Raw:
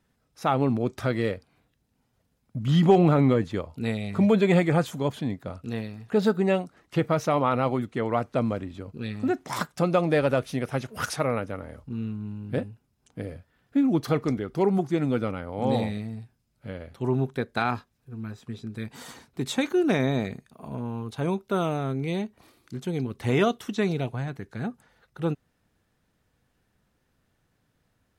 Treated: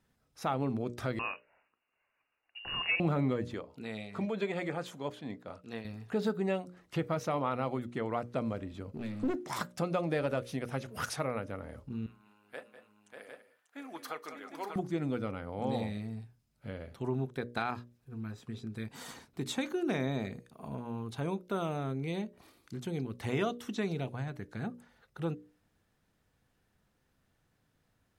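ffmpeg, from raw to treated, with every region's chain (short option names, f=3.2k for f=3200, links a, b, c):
-filter_complex "[0:a]asettb=1/sr,asplit=3[a][b][c];[a]atrim=end=1.194[d];[b]atrim=start=1.19:end=3,asetpts=PTS-STARTPTS,afade=t=in:d=0.004:c=qsin,afade=t=out:st=1.806:d=0.004:c=qsin,highpass=180,tiltshelf=f=840:g=-9.5,lowpass=f=2.6k:t=q:w=0.5098,lowpass=f=2.6k:t=q:w=0.6013,lowpass=f=2.6k:t=q:w=0.9,lowpass=f=2.6k:t=q:w=2.563,afreqshift=-3000[e];[c]atrim=start=2.996[f];[d][e]acrossfade=d=0.004:c1=hsin:c2=qsin[g];[g][f]acrossfade=d=0.004:c1=qsin:c2=hsin,asettb=1/sr,asplit=3[h][i][j];[h]atrim=end=3.544[k];[i]atrim=start=3.54:end=5.85,asetpts=PTS-STARTPTS,afade=t=in:d=0.004:c=qsin,afade=t=out:st=2.306:d=0.004:c=qsin,highpass=f=350:p=1,highshelf=f=9.5k:g=-10.5,tremolo=f=4.5:d=0.46[l];[j]atrim=start=5.846[m];[k][l]acrossfade=d=0.004:c1=hsin:c2=qsin[n];[n][m]acrossfade=d=0.004:c1=qsin:c2=hsin,asettb=1/sr,asplit=3[o][p][q];[o]atrim=end=8.944[r];[p]atrim=start=8.94:end=9.44,asetpts=PTS-STARTPTS,afade=t=in:d=0.004:c=qsin,afade=t=out:st=0.496:d=0.004:c=qsin,aeval=exprs='clip(val(0),-1,0.0168)':c=same,equalizer=f=310:w=1.3:g=9[s];[q]atrim=start=9.436[t];[r][s]acrossfade=d=0.004:c1=hsin:c2=qsin[u];[u][t]acrossfade=d=0.004:c1=qsin:c2=hsin,asettb=1/sr,asplit=3[v][w][x];[v]atrim=end=12.064[y];[w]atrim=start=12.06:end=14.76,asetpts=PTS-STARTPTS,afade=t=in:d=0.004:c=qsin,afade=t=out:st=2.696:d=0.004:c=qsin,highpass=1k,equalizer=f=4.3k:t=o:w=1.8:g=-6,aecho=1:1:195|203|591|754:0.158|0.188|0.473|0.473,atrim=end_sample=119070[z];[x]atrim=start=14.756[aa];[y][z]acrossfade=d=0.004:c1=hsin:c2=qsin[ab];[ab][aa]acrossfade=d=0.004:c1=qsin:c2=hsin,bandreject=f=60:t=h:w=6,bandreject=f=120:t=h:w=6,bandreject=f=180:t=h:w=6,bandreject=f=240:t=h:w=6,bandreject=f=300:t=h:w=6,bandreject=f=360:t=h:w=6,bandreject=f=420:t=h:w=6,bandreject=f=480:t=h:w=6,bandreject=f=540:t=h:w=6,bandreject=f=600:t=h:w=6,acompressor=threshold=-35dB:ratio=1.5,volume=-3dB"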